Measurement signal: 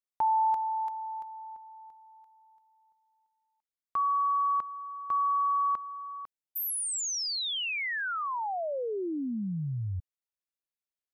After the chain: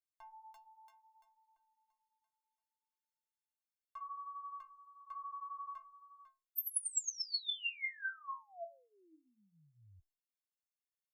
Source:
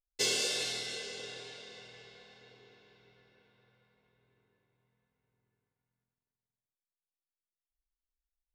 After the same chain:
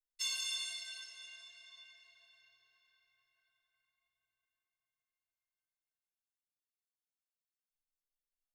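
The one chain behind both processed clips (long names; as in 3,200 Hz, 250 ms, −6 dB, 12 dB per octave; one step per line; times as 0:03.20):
guitar amp tone stack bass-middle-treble 10-0-10
flanger 0.6 Hz, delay 8.7 ms, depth 8.5 ms, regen −24%
stiff-string resonator 320 Hz, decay 0.32 s, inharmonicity 0.03
level +12.5 dB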